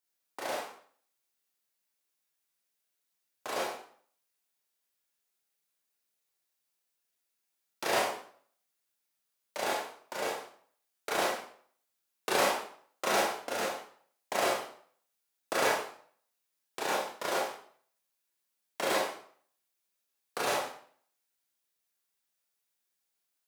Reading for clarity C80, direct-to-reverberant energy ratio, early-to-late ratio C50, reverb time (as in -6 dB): 7.0 dB, -5.0 dB, 2.5 dB, 0.55 s